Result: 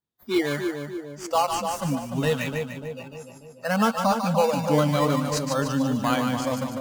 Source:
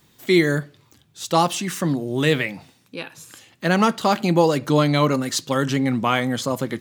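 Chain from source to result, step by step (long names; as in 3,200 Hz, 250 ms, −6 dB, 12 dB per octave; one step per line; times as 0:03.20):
noise reduction from a noise print of the clip's start 30 dB
in parallel at −4.5 dB: sample-and-hold swept by an LFO 13×, swing 60% 0.68 Hz
on the sum: echo with a time of its own for lows and highs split 760 Hz, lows 295 ms, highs 148 ms, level −5 dB
level −7 dB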